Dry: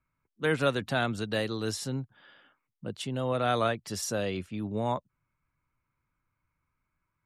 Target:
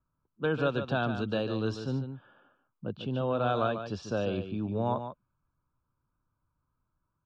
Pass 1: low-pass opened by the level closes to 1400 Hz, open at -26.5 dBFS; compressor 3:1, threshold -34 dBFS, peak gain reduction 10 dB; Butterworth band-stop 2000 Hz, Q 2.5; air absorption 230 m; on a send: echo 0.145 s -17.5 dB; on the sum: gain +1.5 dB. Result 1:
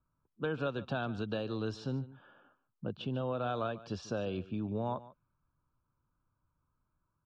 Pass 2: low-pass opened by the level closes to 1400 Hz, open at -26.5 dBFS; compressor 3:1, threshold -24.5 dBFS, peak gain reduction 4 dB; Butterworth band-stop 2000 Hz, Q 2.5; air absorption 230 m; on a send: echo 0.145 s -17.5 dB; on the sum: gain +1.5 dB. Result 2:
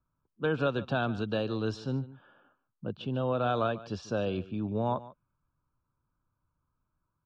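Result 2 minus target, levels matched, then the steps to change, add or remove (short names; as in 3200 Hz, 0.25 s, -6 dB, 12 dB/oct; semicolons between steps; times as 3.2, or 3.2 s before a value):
echo-to-direct -8.5 dB
change: echo 0.145 s -9 dB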